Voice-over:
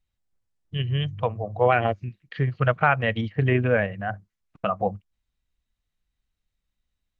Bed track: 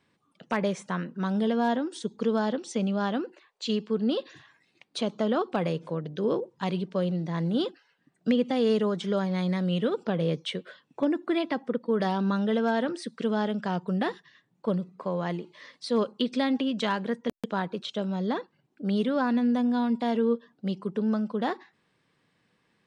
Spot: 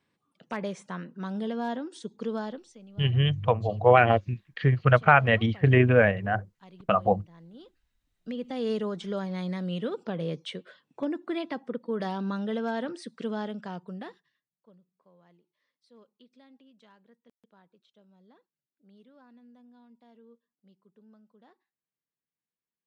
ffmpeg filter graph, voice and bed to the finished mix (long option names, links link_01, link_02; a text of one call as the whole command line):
ffmpeg -i stem1.wav -i stem2.wav -filter_complex "[0:a]adelay=2250,volume=2dB[link_01];[1:a]volume=11.5dB,afade=type=out:start_time=2.38:duration=0.39:silence=0.149624,afade=type=in:start_time=8.09:duration=0.62:silence=0.133352,afade=type=out:start_time=13.28:duration=1.21:silence=0.0501187[link_02];[link_01][link_02]amix=inputs=2:normalize=0" out.wav